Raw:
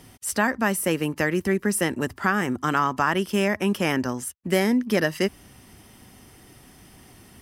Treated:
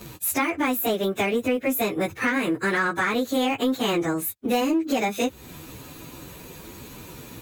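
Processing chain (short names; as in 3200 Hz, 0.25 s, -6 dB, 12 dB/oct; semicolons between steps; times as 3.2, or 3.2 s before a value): pitch shift by moving bins +4.5 st; in parallel at -7 dB: hard clip -23 dBFS, distortion -11 dB; on the sum: compressor 3:1, threshold -33 dBFS, peak gain reduction 12.5 dB; gain +9 dB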